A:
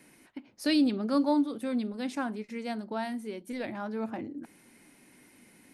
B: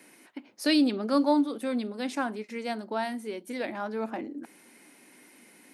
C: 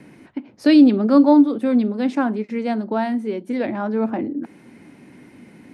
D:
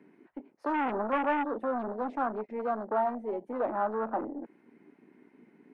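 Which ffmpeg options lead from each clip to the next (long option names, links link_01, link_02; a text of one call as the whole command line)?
ffmpeg -i in.wav -af "highpass=270,volume=4dB" out.wav
ffmpeg -i in.wav -filter_complex "[0:a]aemphasis=mode=reproduction:type=riaa,acrossover=split=140|1700[link_01][link_02][link_03];[link_01]acompressor=mode=upward:threshold=-48dB:ratio=2.5[link_04];[link_04][link_02][link_03]amix=inputs=3:normalize=0,volume=6.5dB" out.wav
ffmpeg -i in.wav -filter_complex "[0:a]aeval=exprs='(tanh(12.6*val(0)+0.2)-tanh(0.2))/12.6':channel_layout=same,afwtdn=0.0224,acrossover=split=500 2400:gain=0.112 1 0.158[link_01][link_02][link_03];[link_01][link_02][link_03]amix=inputs=3:normalize=0,volume=3.5dB" out.wav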